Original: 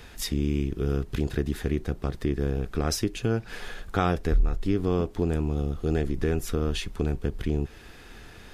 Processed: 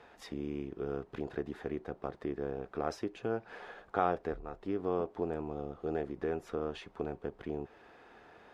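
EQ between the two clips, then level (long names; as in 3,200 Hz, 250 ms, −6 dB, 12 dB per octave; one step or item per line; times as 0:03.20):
resonant band-pass 740 Hz, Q 1.2
−1.0 dB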